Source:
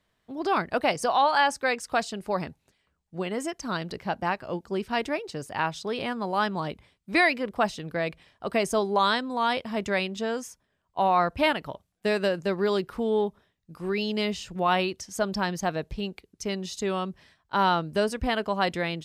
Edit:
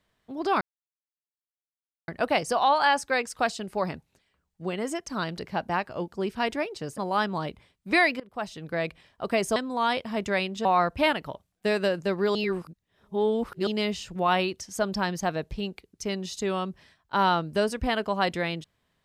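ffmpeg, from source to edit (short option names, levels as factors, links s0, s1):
-filter_complex "[0:a]asplit=8[s0][s1][s2][s3][s4][s5][s6][s7];[s0]atrim=end=0.61,asetpts=PTS-STARTPTS,afade=t=out:st=0.606:d=0.004:c=hsin,apad=pad_dur=1.47[s8];[s1]atrim=start=0.61:end=5.512,asetpts=PTS-STARTPTS,afade=t=in:d=0.004:c=hsin[s9];[s2]atrim=start=6.198:end=7.42,asetpts=PTS-STARTPTS,afade=t=out:st=1.218:d=0.004:c=hsin:silence=0.0749894[s10];[s3]atrim=start=7.42:end=8.782,asetpts=PTS-STARTPTS,afade=t=in:d=0.6:silence=0.0749894[s11];[s4]atrim=start=9.158:end=10.252[s12];[s5]atrim=start=11.048:end=12.752[s13];[s6]atrim=start=12.748:end=14.072,asetpts=PTS-STARTPTS,areverse[s14];[s7]atrim=start=14.068[s15];[s8][s9]concat=n=2:v=0:a=1[s16];[s10][s11]concat=n=2:v=0:a=1[s17];[s16][s17]acrossfade=d=0.004:c1=hsin:c2=hsin[s18];[s18][s12]acrossfade=d=0.004:c1=hsin:c2=hsin[s19];[s19][s13]acrossfade=d=0.004:c1=hsin:c2=hsin[s20];[s20][s14]acrossfade=d=0.004:c1=hsin:c2=hsin[s21];[s21][s15]acrossfade=d=0.004:c1=hsin:c2=hsin"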